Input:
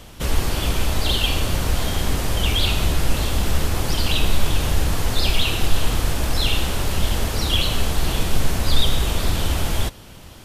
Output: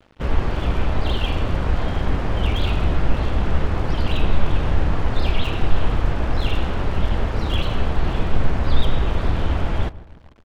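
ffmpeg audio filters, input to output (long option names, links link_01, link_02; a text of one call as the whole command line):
ffmpeg -i in.wav -filter_complex "[0:a]lowpass=1900,aeval=exprs='sgn(val(0))*max(abs(val(0))-0.0106,0)':channel_layout=same,asplit=2[link_01][link_02];[link_02]adelay=151,lowpass=frequency=1300:poles=1,volume=-17dB,asplit=2[link_03][link_04];[link_04]adelay=151,lowpass=frequency=1300:poles=1,volume=0.49,asplit=2[link_05][link_06];[link_06]adelay=151,lowpass=frequency=1300:poles=1,volume=0.49,asplit=2[link_07][link_08];[link_08]adelay=151,lowpass=frequency=1300:poles=1,volume=0.49[link_09];[link_01][link_03][link_05][link_07][link_09]amix=inputs=5:normalize=0,volume=1.5dB" out.wav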